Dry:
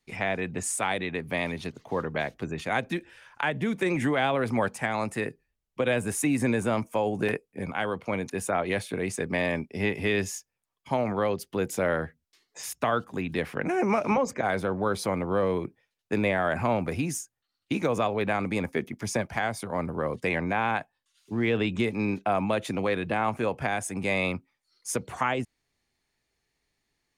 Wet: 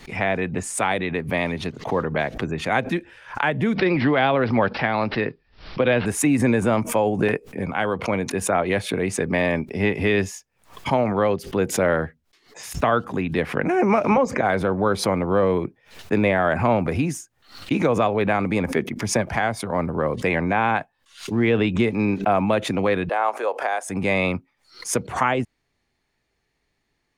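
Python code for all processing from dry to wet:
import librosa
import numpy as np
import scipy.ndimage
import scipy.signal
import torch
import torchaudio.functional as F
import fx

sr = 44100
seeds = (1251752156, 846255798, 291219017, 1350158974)

y = fx.chain(x, sr, fx.high_shelf(hz=7400.0, db=9.5),
    fx.resample_bad(factor=4, down='none', up='filtered'), at=(3.75, 6.06))
y = fx.chain(y, sr, fx.highpass(hz=460.0, slope=24),
    fx.peak_eq(hz=2500.0, db=-6.0, octaves=0.98), at=(23.09, 23.9))
y = fx.high_shelf(y, sr, hz=4500.0, db=-10.0)
y = fx.pre_swell(y, sr, db_per_s=140.0)
y = F.gain(torch.from_numpy(y), 6.5).numpy()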